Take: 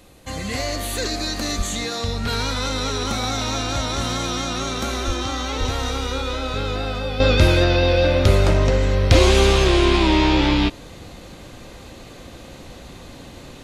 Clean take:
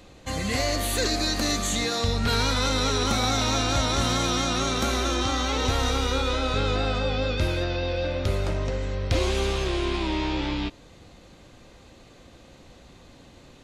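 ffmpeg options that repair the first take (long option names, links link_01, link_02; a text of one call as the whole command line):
ffmpeg -i in.wav -filter_complex "[0:a]asplit=3[link_01][link_02][link_03];[link_01]afade=type=out:start_time=1.57:duration=0.02[link_04];[link_02]highpass=frequency=140:width=0.5412,highpass=frequency=140:width=1.3066,afade=type=in:start_time=1.57:duration=0.02,afade=type=out:start_time=1.69:duration=0.02[link_05];[link_03]afade=type=in:start_time=1.69:duration=0.02[link_06];[link_04][link_05][link_06]amix=inputs=3:normalize=0,asplit=3[link_07][link_08][link_09];[link_07]afade=type=out:start_time=5.06:duration=0.02[link_10];[link_08]highpass=frequency=140:width=0.5412,highpass=frequency=140:width=1.3066,afade=type=in:start_time=5.06:duration=0.02,afade=type=out:start_time=5.18:duration=0.02[link_11];[link_09]afade=type=in:start_time=5.18:duration=0.02[link_12];[link_10][link_11][link_12]amix=inputs=3:normalize=0,asplit=3[link_13][link_14][link_15];[link_13]afade=type=out:start_time=5.59:duration=0.02[link_16];[link_14]highpass=frequency=140:width=0.5412,highpass=frequency=140:width=1.3066,afade=type=in:start_time=5.59:duration=0.02,afade=type=out:start_time=5.71:duration=0.02[link_17];[link_15]afade=type=in:start_time=5.71:duration=0.02[link_18];[link_16][link_17][link_18]amix=inputs=3:normalize=0,agate=range=-21dB:threshold=-32dB,asetnsamples=nb_out_samples=441:pad=0,asendcmd='7.2 volume volume -10.5dB',volume=0dB" out.wav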